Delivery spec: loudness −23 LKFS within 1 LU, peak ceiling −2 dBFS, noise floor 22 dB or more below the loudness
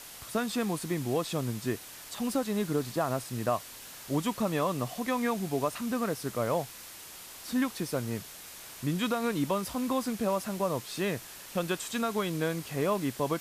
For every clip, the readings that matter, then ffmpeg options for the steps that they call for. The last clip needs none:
background noise floor −47 dBFS; target noise floor −54 dBFS; integrated loudness −32.0 LKFS; sample peak −16.5 dBFS; target loudness −23.0 LKFS
→ -af "afftdn=noise_reduction=7:noise_floor=-47"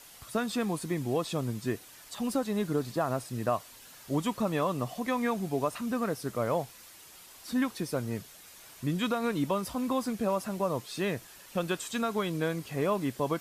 background noise floor −52 dBFS; target noise floor −54 dBFS
→ -af "afftdn=noise_reduction=6:noise_floor=-52"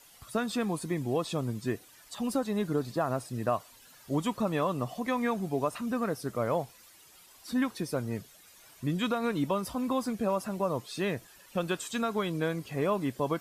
background noise floor −57 dBFS; integrated loudness −32.0 LKFS; sample peak −17.0 dBFS; target loudness −23.0 LKFS
→ -af "volume=9dB"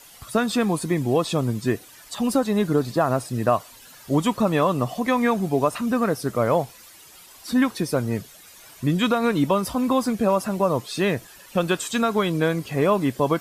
integrated loudness −23.0 LKFS; sample peak −8.0 dBFS; background noise floor −48 dBFS

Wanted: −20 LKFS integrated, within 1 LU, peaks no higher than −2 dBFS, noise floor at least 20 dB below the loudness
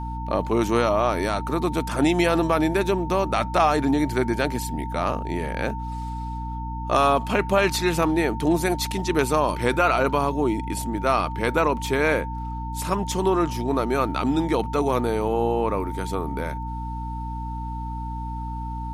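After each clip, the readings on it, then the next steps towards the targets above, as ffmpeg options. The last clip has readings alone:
mains hum 60 Hz; hum harmonics up to 300 Hz; level of the hum −29 dBFS; interfering tone 900 Hz; level of the tone −33 dBFS; integrated loudness −24.0 LKFS; sample peak −6.5 dBFS; target loudness −20.0 LKFS
→ -af "bandreject=frequency=60:width_type=h:width=6,bandreject=frequency=120:width_type=h:width=6,bandreject=frequency=180:width_type=h:width=6,bandreject=frequency=240:width_type=h:width=6,bandreject=frequency=300:width_type=h:width=6"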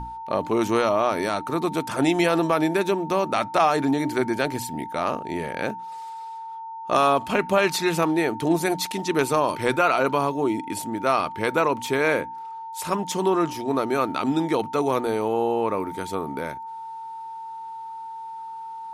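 mains hum none found; interfering tone 900 Hz; level of the tone −33 dBFS
→ -af "bandreject=frequency=900:width=30"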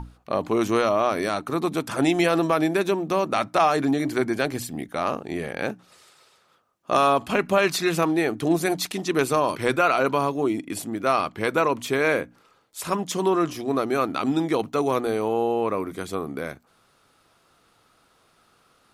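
interfering tone none found; integrated loudness −24.0 LKFS; sample peak −6.5 dBFS; target loudness −20.0 LKFS
→ -af "volume=4dB"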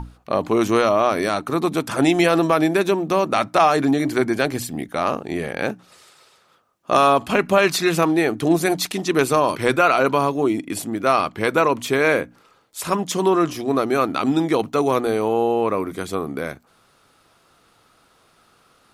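integrated loudness −20.0 LKFS; sample peak −2.5 dBFS; background noise floor −59 dBFS

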